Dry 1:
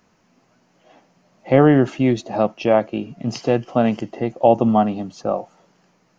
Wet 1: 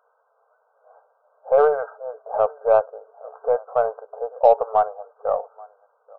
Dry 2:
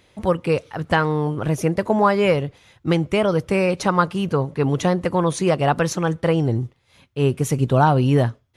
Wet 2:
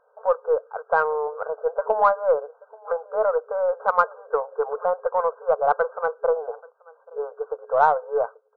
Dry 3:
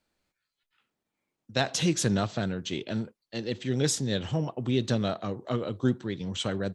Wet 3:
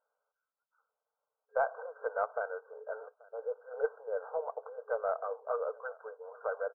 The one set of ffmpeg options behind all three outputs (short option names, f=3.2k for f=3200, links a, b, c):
-af "aecho=1:1:833:0.0631,afftfilt=real='re*between(b*sr/4096,420,1600)':imag='im*between(b*sr/4096,420,1600)':win_size=4096:overlap=0.75,aeval=exprs='0.841*(cos(1*acos(clip(val(0)/0.841,-1,1)))-cos(1*PI/2))+0.00841*(cos(8*acos(clip(val(0)/0.841,-1,1)))-cos(8*PI/2))':c=same"